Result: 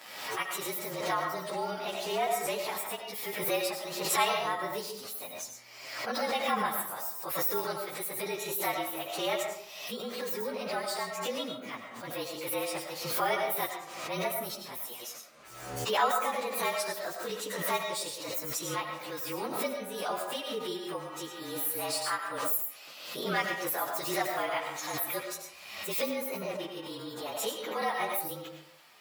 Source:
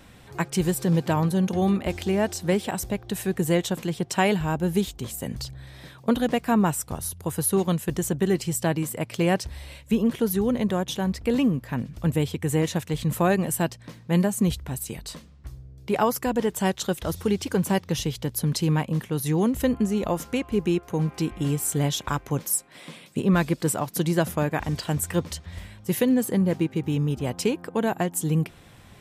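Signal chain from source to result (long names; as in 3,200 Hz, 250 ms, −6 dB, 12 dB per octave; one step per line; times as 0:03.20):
partials spread apart or drawn together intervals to 111%
high-pass filter 730 Hz 12 dB per octave
on a send at −3.5 dB: convolution reverb RT60 0.60 s, pre-delay 60 ms
on the sum: background raised ahead of every attack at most 51 dB per second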